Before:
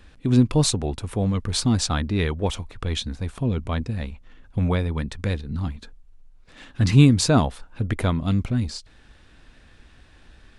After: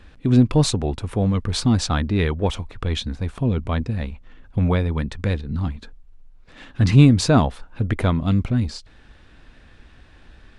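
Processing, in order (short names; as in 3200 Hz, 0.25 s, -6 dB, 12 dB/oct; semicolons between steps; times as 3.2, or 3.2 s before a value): high shelf 5800 Hz -9.5 dB; in parallel at -7.5 dB: soft clip -12 dBFS, distortion -13 dB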